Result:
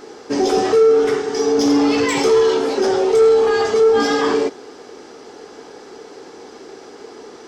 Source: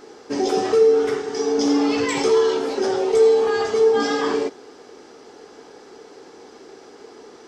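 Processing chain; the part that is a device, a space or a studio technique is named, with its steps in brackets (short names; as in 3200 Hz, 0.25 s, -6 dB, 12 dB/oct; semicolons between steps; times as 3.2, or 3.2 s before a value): saturation between pre-emphasis and de-emphasis (high shelf 3500 Hz +11.5 dB; soft clip -12.5 dBFS, distortion -16 dB; high shelf 3500 Hz -11.5 dB); gain +5.5 dB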